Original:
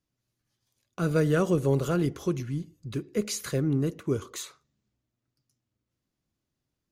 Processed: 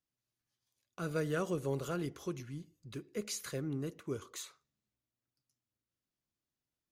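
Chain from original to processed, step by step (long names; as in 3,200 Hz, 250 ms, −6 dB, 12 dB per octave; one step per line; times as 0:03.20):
low-shelf EQ 440 Hz −6.5 dB
level −7 dB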